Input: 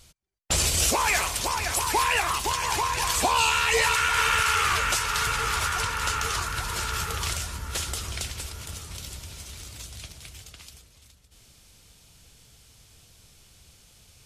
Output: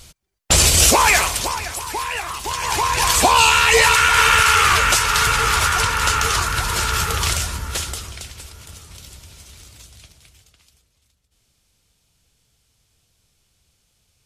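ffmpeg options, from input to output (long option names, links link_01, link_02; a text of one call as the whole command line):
ffmpeg -i in.wav -af "volume=21dB,afade=type=out:start_time=1.03:duration=0.71:silence=0.251189,afade=type=in:start_time=2.37:duration=0.69:silence=0.281838,afade=type=out:start_time=7.44:duration=0.72:silence=0.281838,afade=type=out:start_time=9.62:duration=0.96:silence=0.398107" out.wav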